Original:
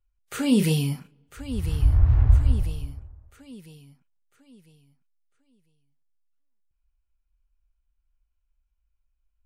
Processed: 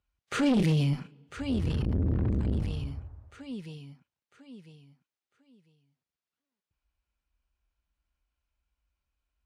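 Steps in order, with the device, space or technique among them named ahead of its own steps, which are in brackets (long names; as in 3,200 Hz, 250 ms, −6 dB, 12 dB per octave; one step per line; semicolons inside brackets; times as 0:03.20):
valve radio (band-pass filter 81–5,200 Hz; tube saturation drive 24 dB, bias 0.3; saturating transformer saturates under 200 Hz)
level +5.5 dB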